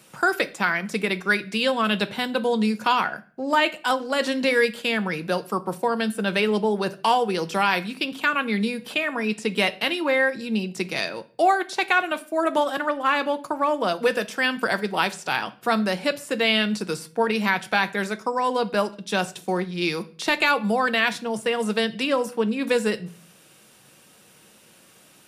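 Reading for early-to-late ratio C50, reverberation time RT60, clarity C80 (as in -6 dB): 18.5 dB, 0.45 s, 23.0 dB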